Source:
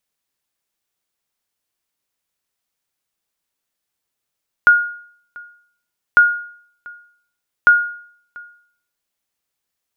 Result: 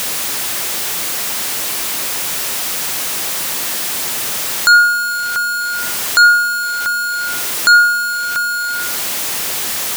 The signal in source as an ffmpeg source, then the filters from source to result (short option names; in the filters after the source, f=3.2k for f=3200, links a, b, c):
-f lavfi -i "aevalsrc='0.708*(sin(2*PI*1430*mod(t,1.5))*exp(-6.91*mod(t,1.5)/0.58)+0.0531*sin(2*PI*1430*max(mod(t,1.5)-0.69,0))*exp(-6.91*max(mod(t,1.5)-0.69,0)/0.58))':d=4.5:s=44100"
-filter_complex "[0:a]aeval=exprs='val(0)+0.5*0.0668*sgn(val(0))':c=same,highpass=f=150:p=1,asplit=2[a][b];[b]aeval=exprs='0.794*sin(PI/2*3.55*val(0)/0.794)':c=same,volume=-8dB[c];[a][c]amix=inputs=2:normalize=0"